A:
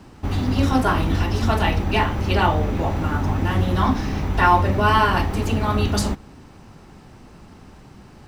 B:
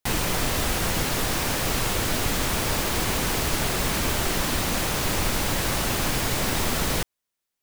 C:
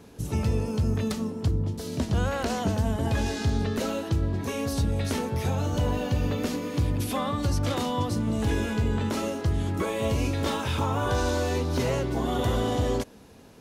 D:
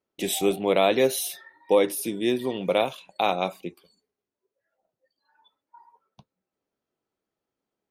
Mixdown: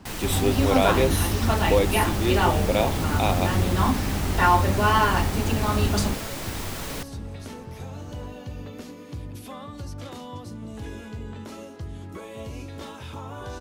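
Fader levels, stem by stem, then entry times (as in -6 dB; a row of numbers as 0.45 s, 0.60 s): -3.0 dB, -8.5 dB, -10.5 dB, -1.5 dB; 0.00 s, 0.00 s, 2.35 s, 0.00 s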